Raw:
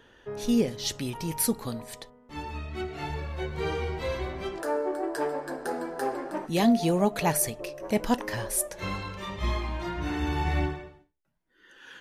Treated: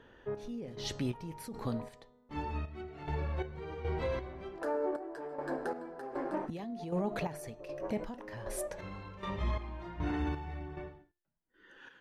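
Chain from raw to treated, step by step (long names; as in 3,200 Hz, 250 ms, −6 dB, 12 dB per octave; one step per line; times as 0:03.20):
low-pass filter 1,600 Hz 6 dB per octave
hum removal 352.5 Hz, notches 23
brickwall limiter −25.5 dBFS, peak gain reduction 13.5 dB
square-wave tremolo 1.3 Hz, depth 65%, duty 45%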